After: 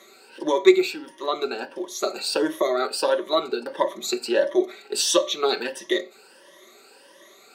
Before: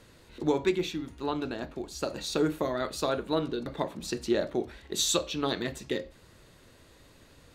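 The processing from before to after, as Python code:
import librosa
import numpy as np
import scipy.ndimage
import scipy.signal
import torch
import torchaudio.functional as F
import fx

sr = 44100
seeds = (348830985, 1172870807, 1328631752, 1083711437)

y = fx.spec_ripple(x, sr, per_octave=1.2, drift_hz=1.5, depth_db=15)
y = scipy.signal.sosfilt(scipy.signal.butter(4, 320.0, 'highpass', fs=sr, output='sos'), y)
y = y + 0.59 * np.pad(y, (int(5.2 * sr / 1000.0), 0))[:len(y)]
y = y * 10.0 ** (4.5 / 20.0)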